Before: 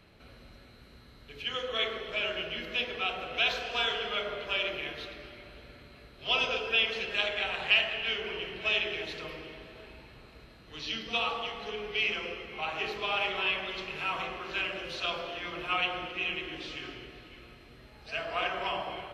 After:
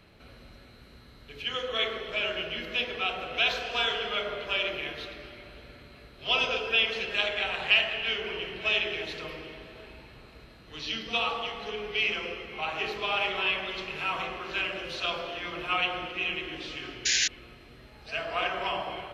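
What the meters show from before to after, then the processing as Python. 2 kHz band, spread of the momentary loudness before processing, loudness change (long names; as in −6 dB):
+2.0 dB, 16 LU, +2.0 dB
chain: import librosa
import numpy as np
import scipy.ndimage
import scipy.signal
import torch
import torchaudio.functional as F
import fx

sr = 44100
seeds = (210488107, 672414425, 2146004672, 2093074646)

y = fx.spec_paint(x, sr, seeds[0], shape='noise', start_s=17.05, length_s=0.23, low_hz=1500.0, high_hz=7200.0, level_db=-27.0)
y = y * librosa.db_to_amplitude(2.0)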